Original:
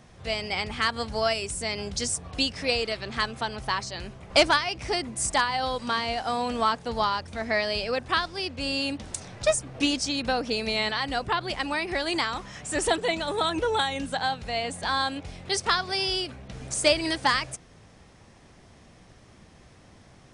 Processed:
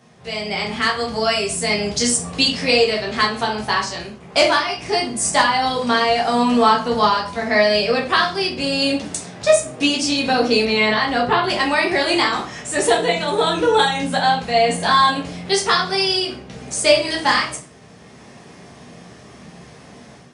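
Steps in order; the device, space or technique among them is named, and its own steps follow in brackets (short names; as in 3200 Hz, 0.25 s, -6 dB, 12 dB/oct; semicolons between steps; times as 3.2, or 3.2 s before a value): far laptop microphone (reverb RT60 0.45 s, pre-delay 7 ms, DRR -2.5 dB; HPF 120 Hz 12 dB/oct; AGC gain up to 9 dB); 10.65–11.44 high shelf 6100 Hz -12 dB; gain -1 dB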